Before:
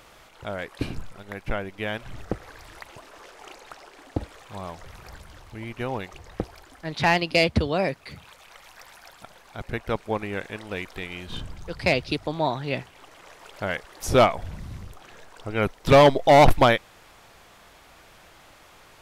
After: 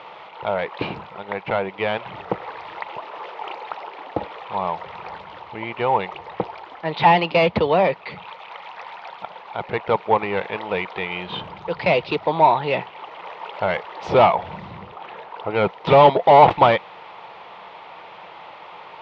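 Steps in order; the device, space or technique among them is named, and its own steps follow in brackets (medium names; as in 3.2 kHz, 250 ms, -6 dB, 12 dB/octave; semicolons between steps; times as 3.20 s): 14.71–15.65 s: treble shelf 7.1 kHz -12 dB; overdrive pedal into a guitar cabinet (overdrive pedal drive 19 dB, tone 2.7 kHz, clips at -9 dBFS; cabinet simulation 99–3600 Hz, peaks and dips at 180 Hz +6 dB, 260 Hz -7 dB, 470 Hz +4 dB, 900 Hz +9 dB, 1.6 kHz -8 dB)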